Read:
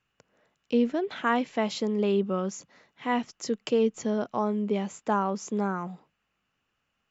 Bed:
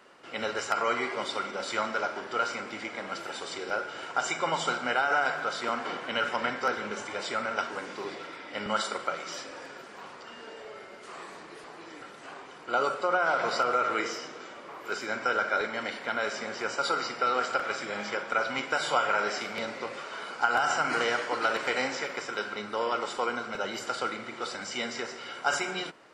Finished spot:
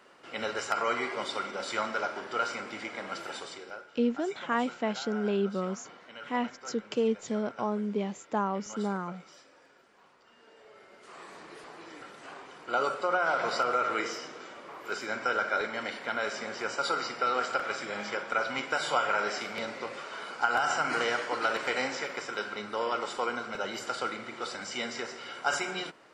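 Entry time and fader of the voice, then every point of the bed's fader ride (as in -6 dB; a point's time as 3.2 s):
3.25 s, -3.5 dB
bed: 3.36 s -1.5 dB
3.9 s -16.5 dB
10.2 s -16.5 dB
11.47 s -1.5 dB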